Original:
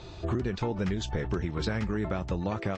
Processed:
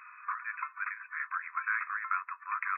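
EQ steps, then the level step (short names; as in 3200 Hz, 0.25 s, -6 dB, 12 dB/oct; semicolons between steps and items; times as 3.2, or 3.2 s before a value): brick-wall FIR band-pass 970–2600 Hz; bell 1400 Hz +9 dB 0.83 oct; +1.5 dB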